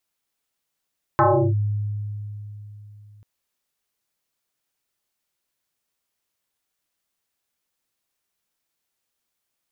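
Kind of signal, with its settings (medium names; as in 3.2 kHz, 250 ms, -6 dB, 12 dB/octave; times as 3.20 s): FM tone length 2.04 s, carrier 104 Hz, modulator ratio 2.28, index 5.4, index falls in 0.35 s linear, decay 3.55 s, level -12 dB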